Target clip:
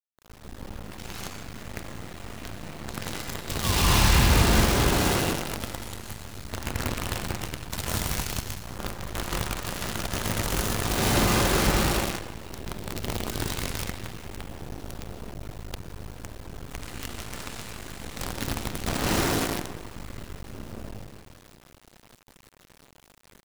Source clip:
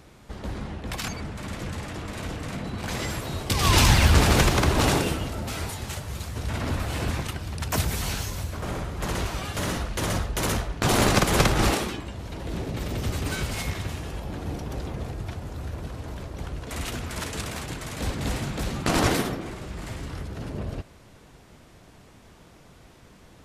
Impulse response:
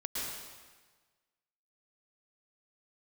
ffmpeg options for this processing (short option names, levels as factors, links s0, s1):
-filter_complex "[0:a]aecho=1:1:179|358|537|716|895:0.0944|0.0557|0.0329|0.0194|0.0114[s0];[1:a]atrim=start_sample=2205,asetrate=37044,aresample=44100[s1];[s0][s1]afir=irnorm=-1:irlink=0,acrusher=bits=4:dc=4:mix=0:aa=0.000001,volume=0.447"